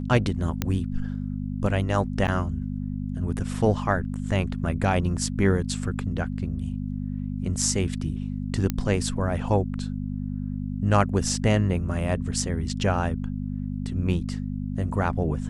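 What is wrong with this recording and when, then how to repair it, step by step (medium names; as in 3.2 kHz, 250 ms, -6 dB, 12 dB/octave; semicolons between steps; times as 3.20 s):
hum 50 Hz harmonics 5 -30 dBFS
0.62 s: pop -10 dBFS
2.27–2.28 s: dropout 9.1 ms
8.70 s: pop -11 dBFS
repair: de-click; de-hum 50 Hz, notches 5; interpolate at 2.27 s, 9.1 ms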